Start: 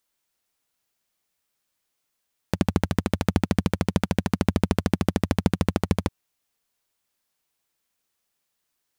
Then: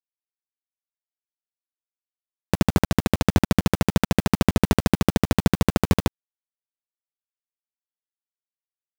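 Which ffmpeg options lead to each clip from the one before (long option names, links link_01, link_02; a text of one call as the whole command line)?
ffmpeg -i in.wav -af "acrusher=bits=4:mix=0:aa=0.000001,volume=3dB" out.wav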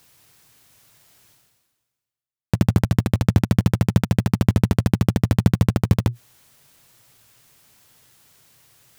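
ffmpeg -i in.wav -af "equalizer=frequency=120:width=1.7:gain=15,areverse,acompressor=mode=upward:threshold=-18dB:ratio=2.5,areverse,volume=-3.5dB" out.wav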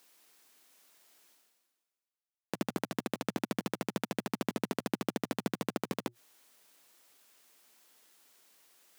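ffmpeg -i in.wav -af "highpass=frequency=250:width=0.5412,highpass=frequency=250:width=1.3066,volume=-8.5dB" out.wav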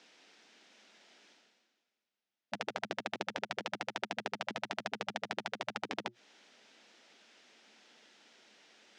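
ffmpeg -i in.wav -af "afftfilt=real='re*lt(hypot(re,im),0.0708)':imag='im*lt(hypot(re,im),0.0708)':win_size=1024:overlap=0.75,highpass=200,equalizer=frequency=210:width_type=q:width=4:gain=9,equalizer=frequency=1100:width_type=q:width=4:gain=-8,equalizer=frequency=4400:width_type=q:width=4:gain=-4,lowpass=frequency=5200:width=0.5412,lowpass=frequency=5200:width=1.3066,acompressor=threshold=-49dB:ratio=1.5,volume=9dB" out.wav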